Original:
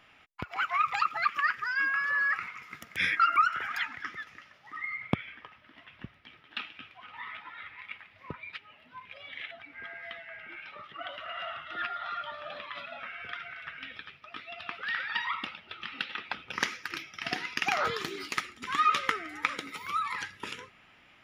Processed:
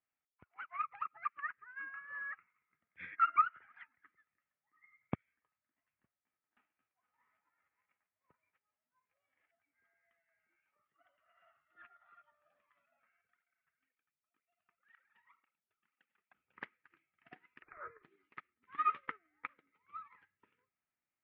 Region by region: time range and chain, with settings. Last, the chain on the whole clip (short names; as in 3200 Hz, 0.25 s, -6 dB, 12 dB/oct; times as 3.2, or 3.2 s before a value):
0.83–2.08 LPF 2900 Hz + upward compressor, threshold -31 dBFS
6.03–9.48 spectral whitening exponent 0.6 + overdrive pedal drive 7 dB, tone 1400 Hz, clips at -20 dBFS + air absorption 62 m
13.21–16.35 G.711 law mismatch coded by A + tape flanging out of phase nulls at 2 Hz, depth 3.9 ms
17.62–18.03 careless resampling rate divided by 8×, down none, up filtered + fixed phaser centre 790 Hz, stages 6
whole clip: LPF 2300 Hz 24 dB/oct; upward expander 2.5:1, over -41 dBFS; gain -3 dB